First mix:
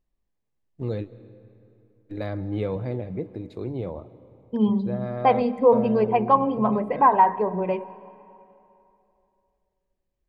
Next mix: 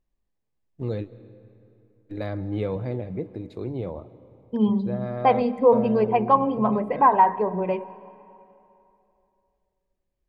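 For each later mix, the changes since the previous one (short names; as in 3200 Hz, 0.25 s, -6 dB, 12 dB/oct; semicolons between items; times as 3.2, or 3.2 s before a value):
none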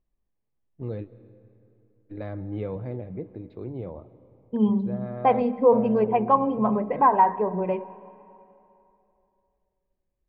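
first voice -3.5 dB; master: add air absorption 330 m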